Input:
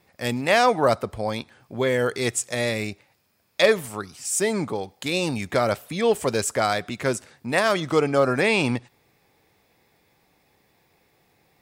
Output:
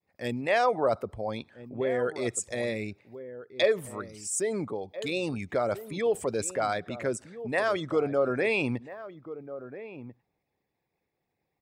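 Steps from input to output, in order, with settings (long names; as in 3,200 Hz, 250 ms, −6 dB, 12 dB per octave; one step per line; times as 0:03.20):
spectral envelope exaggerated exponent 1.5
downward expander −54 dBFS
slap from a distant wall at 230 metres, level −13 dB
level −6 dB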